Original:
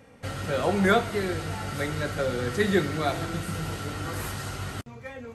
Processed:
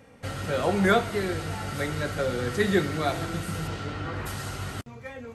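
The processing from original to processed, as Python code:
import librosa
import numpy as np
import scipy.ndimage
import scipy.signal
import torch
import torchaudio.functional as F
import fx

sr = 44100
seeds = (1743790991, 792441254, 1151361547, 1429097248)

y = fx.lowpass(x, sr, hz=fx.line((3.67, 6600.0), (4.25, 2600.0)), slope=12, at=(3.67, 4.25), fade=0.02)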